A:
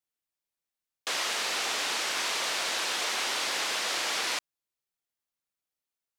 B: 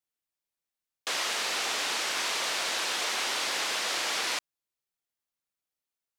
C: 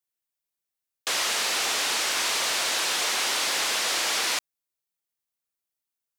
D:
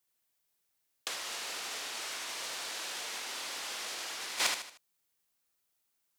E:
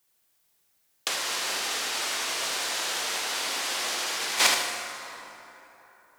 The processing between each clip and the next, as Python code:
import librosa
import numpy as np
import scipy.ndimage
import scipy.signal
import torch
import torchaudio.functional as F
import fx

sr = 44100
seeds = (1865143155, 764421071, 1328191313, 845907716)

y1 = x
y2 = fx.high_shelf(y1, sr, hz=7300.0, db=7.0)
y2 = fx.leveller(y2, sr, passes=1)
y3 = fx.echo_feedback(y2, sr, ms=77, feedback_pct=40, wet_db=-5.5)
y3 = fx.over_compress(y3, sr, threshold_db=-32.0, ratio=-0.5)
y3 = F.gain(torch.from_numpy(y3), -3.5).numpy()
y4 = fx.rev_plate(y3, sr, seeds[0], rt60_s=3.7, hf_ratio=0.5, predelay_ms=0, drr_db=3.5)
y4 = F.gain(torch.from_numpy(y4), 8.5).numpy()